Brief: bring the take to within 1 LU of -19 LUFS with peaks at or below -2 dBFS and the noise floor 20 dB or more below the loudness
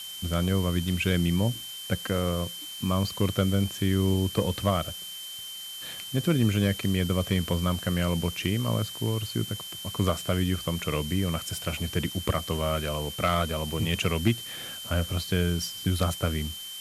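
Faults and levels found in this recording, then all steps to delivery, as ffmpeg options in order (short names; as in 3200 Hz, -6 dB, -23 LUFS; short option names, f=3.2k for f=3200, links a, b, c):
steady tone 3100 Hz; tone level -38 dBFS; noise floor -39 dBFS; noise floor target -48 dBFS; loudness -28.0 LUFS; peak -11.5 dBFS; loudness target -19.0 LUFS
-> -af "bandreject=f=3.1k:w=30"
-af "afftdn=nr=9:nf=-39"
-af "volume=9dB"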